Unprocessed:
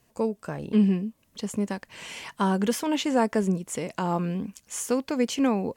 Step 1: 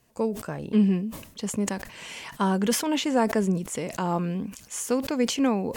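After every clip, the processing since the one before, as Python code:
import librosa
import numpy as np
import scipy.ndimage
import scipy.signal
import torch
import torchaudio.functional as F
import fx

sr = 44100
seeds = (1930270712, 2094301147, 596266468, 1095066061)

y = fx.sustainer(x, sr, db_per_s=93.0)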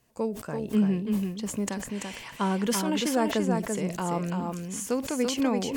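y = x + 10.0 ** (-4.5 / 20.0) * np.pad(x, (int(337 * sr / 1000.0), 0))[:len(x)]
y = y * 10.0 ** (-3.0 / 20.0)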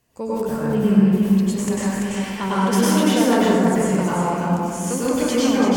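y = fx.rev_plate(x, sr, seeds[0], rt60_s=1.7, hf_ratio=0.45, predelay_ms=85, drr_db=-8.5)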